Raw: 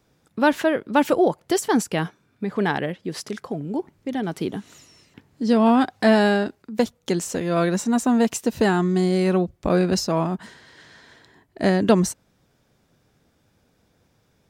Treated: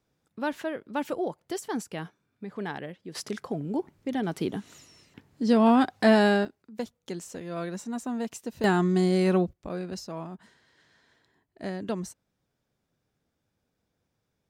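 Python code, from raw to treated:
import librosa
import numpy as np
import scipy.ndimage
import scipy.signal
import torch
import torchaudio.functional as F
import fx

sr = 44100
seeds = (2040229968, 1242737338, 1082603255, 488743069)

y = fx.gain(x, sr, db=fx.steps((0.0, -12.0), (3.15, -3.0), (6.45, -13.0), (8.64, -3.0), (9.53, -15.0)))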